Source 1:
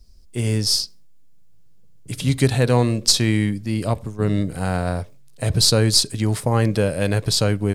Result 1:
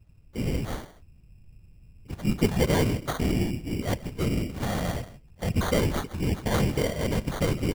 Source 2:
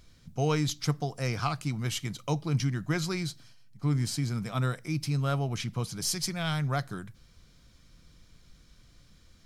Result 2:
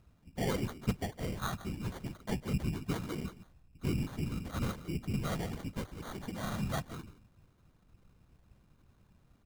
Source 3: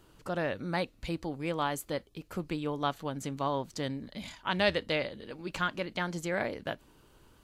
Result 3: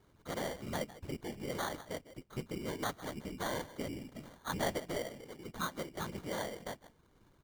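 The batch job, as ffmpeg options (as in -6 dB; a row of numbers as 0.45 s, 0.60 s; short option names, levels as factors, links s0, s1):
-af "equalizer=f=6200:w=0.87:g=-12,aecho=1:1:155:0.15,afftfilt=real='hypot(re,im)*cos(2*PI*random(0))':imag='hypot(re,im)*sin(2*PI*random(1))':win_size=512:overlap=0.75,acrusher=samples=17:mix=1:aa=0.000001"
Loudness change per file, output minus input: -8.0 LU, -7.0 LU, -6.5 LU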